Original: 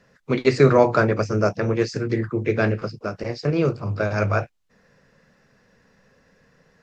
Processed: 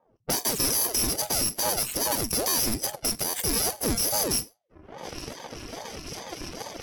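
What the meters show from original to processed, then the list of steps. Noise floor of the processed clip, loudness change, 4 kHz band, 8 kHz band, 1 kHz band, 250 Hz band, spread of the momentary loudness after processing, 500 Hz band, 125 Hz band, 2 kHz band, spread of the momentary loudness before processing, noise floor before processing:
-65 dBFS, -3.0 dB, +10.5 dB, no reading, -6.0 dB, -10.0 dB, 15 LU, -13.0 dB, -15.0 dB, -9.0 dB, 11 LU, -61 dBFS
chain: bit-reversed sample order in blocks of 64 samples; recorder AGC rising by 45 dB/s; treble shelf 2.9 kHz +8.5 dB; on a send: flutter echo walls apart 7.9 m, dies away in 0.24 s; on the sum: dynamic bell 5.9 kHz, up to +7 dB, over -33 dBFS, Q 2.2; level-controlled noise filter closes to 660 Hz, open at -13 dBFS; reverb removal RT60 0.71 s; valve stage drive 19 dB, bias 0.55; buffer glitch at 1.32/2.49/3.24 s, samples 512, times 7; ring modulator with a swept carrier 420 Hz, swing 75%, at 2.4 Hz

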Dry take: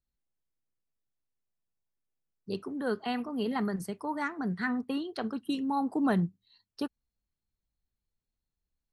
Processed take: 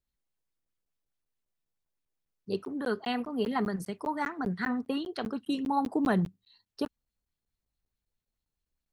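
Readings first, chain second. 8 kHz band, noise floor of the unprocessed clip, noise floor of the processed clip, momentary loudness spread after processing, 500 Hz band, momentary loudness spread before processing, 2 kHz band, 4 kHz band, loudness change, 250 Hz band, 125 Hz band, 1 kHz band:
-0.5 dB, under -85 dBFS, under -85 dBFS, 9 LU, +2.0 dB, 11 LU, +0.5 dB, +1.5 dB, +0.5 dB, 0.0 dB, 0.0 dB, +2.0 dB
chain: crackling interface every 0.20 s, samples 512, zero; sweeping bell 4.7 Hz 410–3900 Hz +6 dB

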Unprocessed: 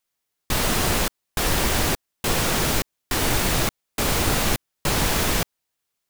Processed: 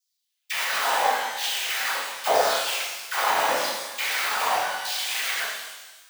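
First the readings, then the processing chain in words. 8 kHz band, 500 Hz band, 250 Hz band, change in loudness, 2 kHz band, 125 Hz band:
-5.5 dB, -1.0 dB, -19.5 dB, -2.0 dB, +1.5 dB, under -30 dB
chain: self-modulated delay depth 0.29 ms; bass shelf 340 Hz +9.5 dB; small resonant body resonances 550/790 Hz, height 13 dB, ringing for 45 ms; whisper effect; peak limiter -12.5 dBFS, peak gain reduction 11 dB; peaking EQ 11 kHz -5.5 dB 2.2 oct; reverb removal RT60 1.5 s; LFO high-pass saw down 0.85 Hz 620–5300 Hz; phase dispersion lows, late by 42 ms, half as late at 870 Hz; pitch-shifted reverb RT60 1.2 s, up +12 st, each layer -8 dB, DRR -4 dB

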